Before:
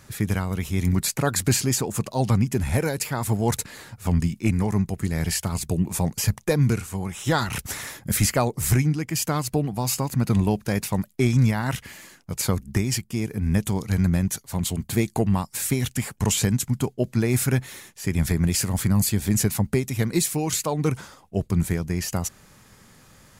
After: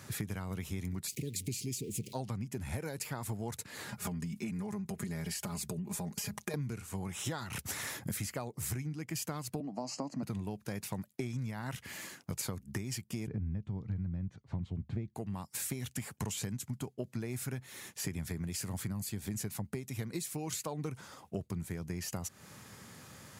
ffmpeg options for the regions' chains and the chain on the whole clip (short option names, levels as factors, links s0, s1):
-filter_complex "[0:a]asettb=1/sr,asplit=3[s0][s1][s2];[s0]atrim=end=1.074[s3];[s1]atrim=start=1.07:end=2.13,asetpts=PTS-STARTPTS,afade=t=in:d=0.004:c=qsin,afade=t=out:st=1.056:d=0.004:c=qsin,aeval=exprs='val(0)+0.5*0.0178*sgn(val(0))':c=same,asuperstop=centerf=1000:order=12:qfactor=0.58[s4];[s2]atrim=start=2.126[s5];[s3][s4]acrossfade=d=0.004:c1=hsin:c2=qsin[s6];[s6][s5]acrossfade=d=0.004:c1=qsin:c2=hsin,asettb=1/sr,asplit=3[s7][s8][s9];[s7]atrim=end=3.884[s10];[s8]atrim=start=3.88:end=6.54,asetpts=PTS-STARTPTS,afade=t=in:d=0.004:c=qsin,afade=t=out:st=2.656:d=0.004:c=qsin,aecho=1:1:4.9:0.84,atrim=end_sample=117306,acompressor=threshold=0.0398:ratio=6:attack=3.2:release=140:knee=1:detection=peak[s11];[s9]atrim=start=6.536[s12];[s10][s11]acrossfade=d=0.004:c1=hsin:c2=qsin[s13];[s13][s12]acrossfade=d=0.004:c1=qsin:c2=hsin,asettb=1/sr,asplit=3[s14][s15][s16];[s14]atrim=end=9.604[s17];[s15]atrim=start=9.6:end=10.23,asetpts=PTS-STARTPTS,afade=t=in:d=0.004:c=qsin,afade=t=out:st=0.626:d=0.004:c=qsin,asuperstop=centerf=3600:order=12:qfactor=6.3,highpass=f=180:w=0.5412,highpass=f=180:w=1.3066,equalizer=f=280:t=q:w=4:g=8,equalizer=f=400:t=q:w=4:g=-5,equalizer=f=630:t=q:w=4:g=9,equalizer=f=1500:t=q:w=4:g=-9,equalizer=f=2300:t=q:w=4:g=-7,equalizer=f=3200:t=q:w=4:g=-7,lowpass=f=6400:w=0.5412,lowpass=f=6400:w=1.3066[s18];[s16]atrim=start=10.226[s19];[s17][s18]acrossfade=d=0.004:c1=hsin:c2=qsin[s20];[s20][s19]acrossfade=d=0.004:c1=qsin:c2=hsin,asettb=1/sr,asplit=3[s21][s22][s23];[s21]atrim=end=13.274[s24];[s22]atrim=start=13.27:end=15.15,asetpts=PTS-STARTPTS,afade=t=in:d=0.004:c=qsin,afade=t=out:st=1.876:d=0.004:c=qsin,lowpass=4200,aemphasis=mode=reproduction:type=riaa[s25];[s23]atrim=start=15.146[s26];[s24][s25]acrossfade=d=0.004:c1=hsin:c2=qsin[s27];[s27][s26]acrossfade=d=0.004:c1=qsin:c2=hsin,highpass=f=77:w=0.5412,highpass=f=77:w=1.3066,acompressor=threshold=0.0178:ratio=10"